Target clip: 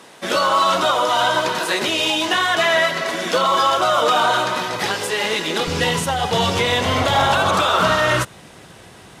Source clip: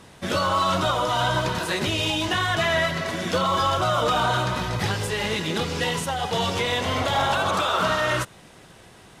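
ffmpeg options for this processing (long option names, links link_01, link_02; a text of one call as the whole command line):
ffmpeg -i in.wav -af "asetnsamples=nb_out_samples=441:pad=0,asendcmd='5.67 highpass f 47',highpass=310,volume=6dB" out.wav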